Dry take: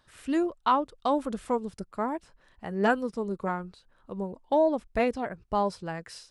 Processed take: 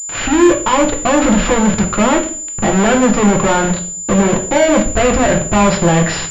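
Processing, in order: sample leveller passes 5; fuzz box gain 44 dB, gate -52 dBFS; on a send at -2 dB: reverb RT60 0.45 s, pre-delay 5 ms; on the sum: pulse-width modulation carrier 7100 Hz

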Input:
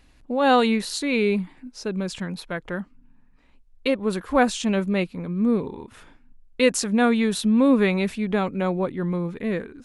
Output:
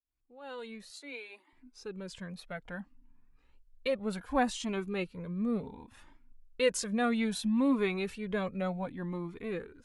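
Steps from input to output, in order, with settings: opening faded in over 3.16 s; 0.9–1.53 steep high-pass 280 Hz 72 dB/oct; cascading flanger rising 0.65 Hz; gain -5 dB

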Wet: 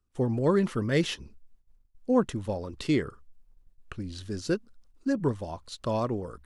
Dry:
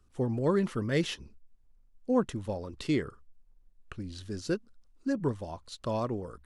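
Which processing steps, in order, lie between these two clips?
gate -59 dBFS, range -15 dB; gain +3 dB

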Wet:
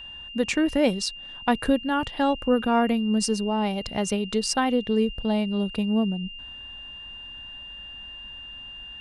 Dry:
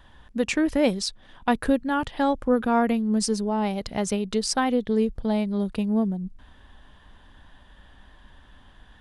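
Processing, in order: added harmonics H 2 -29 dB, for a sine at -8.5 dBFS; whine 2800 Hz -38 dBFS

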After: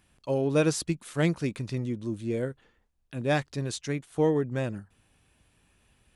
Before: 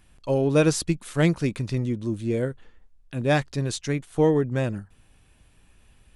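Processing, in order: HPF 88 Hz 6 dB/oct; gain -4 dB

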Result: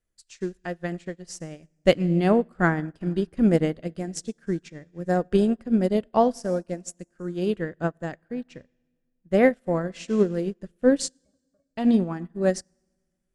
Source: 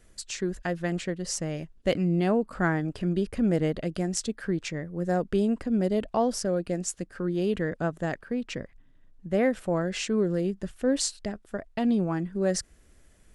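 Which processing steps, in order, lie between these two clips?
11.08–11.71 octave resonator C#, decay 0.13 s; reverb RT60 2.0 s, pre-delay 5 ms, DRR 14.5 dB; upward expander 2.5:1, over -42 dBFS; gain +9 dB

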